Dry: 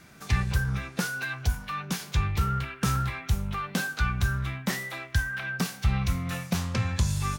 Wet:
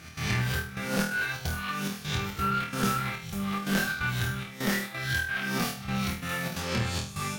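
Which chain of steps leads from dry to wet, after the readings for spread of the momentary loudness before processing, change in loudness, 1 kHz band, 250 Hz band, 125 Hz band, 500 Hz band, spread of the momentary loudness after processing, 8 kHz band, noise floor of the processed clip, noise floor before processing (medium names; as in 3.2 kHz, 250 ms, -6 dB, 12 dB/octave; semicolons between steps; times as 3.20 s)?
4 LU, -0.5 dB, +1.0 dB, +1.5 dB, -5.0 dB, +4.5 dB, 4 LU, +0.5 dB, -43 dBFS, -47 dBFS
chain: reverse spectral sustain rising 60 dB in 0.69 s; high-pass 150 Hz 12 dB/octave; trance gate "x.xxxxx..xxx.xx" 176 bpm -12 dB; band-stop 1 kHz, Q 8.4; on a send: flutter echo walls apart 4.3 m, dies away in 0.4 s; on the sum: one-sided clip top -25.5 dBFS; dynamic bell 6.9 kHz, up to -4 dB, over -44 dBFS, Q 0.79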